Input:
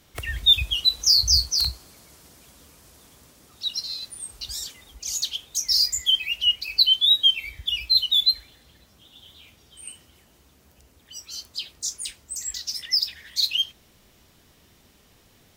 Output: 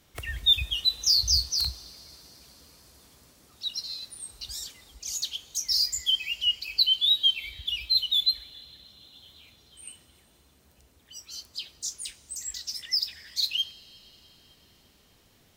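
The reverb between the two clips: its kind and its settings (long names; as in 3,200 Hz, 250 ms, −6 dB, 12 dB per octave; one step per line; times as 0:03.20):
dense smooth reverb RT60 4.4 s, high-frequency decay 0.95×, DRR 19.5 dB
level −4.5 dB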